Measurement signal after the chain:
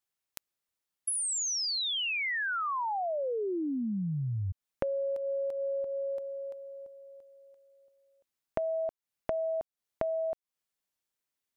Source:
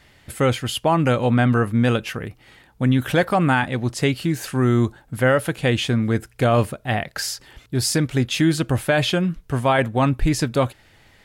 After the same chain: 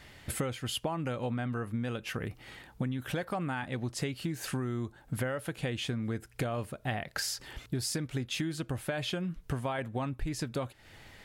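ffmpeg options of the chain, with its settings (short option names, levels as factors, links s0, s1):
-af "acompressor=threshold=0.0316:ratio=20"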